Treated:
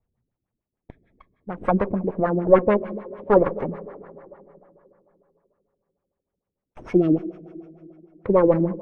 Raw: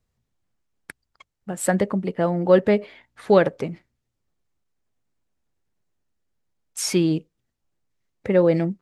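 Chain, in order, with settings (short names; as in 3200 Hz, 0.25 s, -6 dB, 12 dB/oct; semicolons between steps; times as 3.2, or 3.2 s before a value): minimum comb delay 0.34 ms; plate-style reverb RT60 3 s, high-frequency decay 0.75×, DRR 13 dB; LFO low-pass sine 6.7 Hz 290–1700 Hz; gain -1.5 dB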